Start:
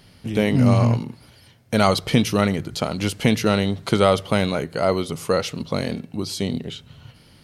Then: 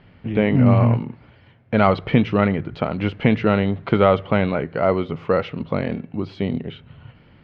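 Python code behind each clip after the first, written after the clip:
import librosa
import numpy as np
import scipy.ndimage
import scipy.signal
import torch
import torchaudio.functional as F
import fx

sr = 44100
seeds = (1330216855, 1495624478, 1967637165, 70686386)

y = scipy.signal.sosfilt(scipy.signal.butter(4, 2600.0, 'lowpass', fs=sr, output='sos'), x)
y = y * librosa.db_to_amplitude(1.5)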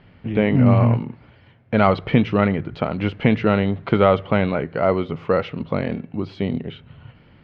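y = x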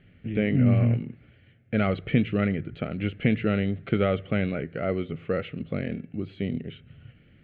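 y = fx.fixed_phaser(x, sr, hz=2300.0, stages=4)
y = y * librosa.db_to_amplitude(-5.0)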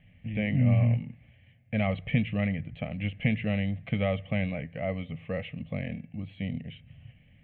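y = fx.fixed_phaser(x, sr, hz=1400.0, stages=6)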